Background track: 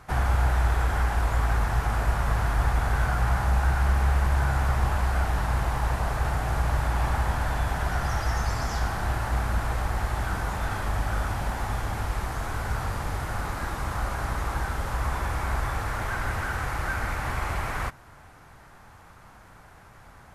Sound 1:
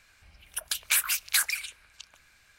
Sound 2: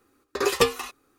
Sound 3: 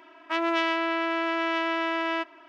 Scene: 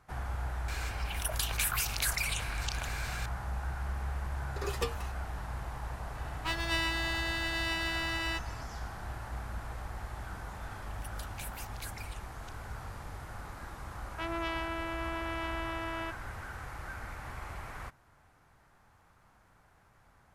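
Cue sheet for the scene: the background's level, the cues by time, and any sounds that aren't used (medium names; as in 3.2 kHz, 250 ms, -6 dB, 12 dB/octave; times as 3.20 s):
background track -13.5 dB
0.68 s: add 1 -9 dB + level flattener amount 70%
4.21 s: add 2 -14.5 dB
6.15 s: add 3 + comb filter that takes the minimum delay 4.1 ms
10.48 s: add 1 -7 dB + compression 2:1, threshold -46 dBFS
13.88 s: add 3 -10.5 dB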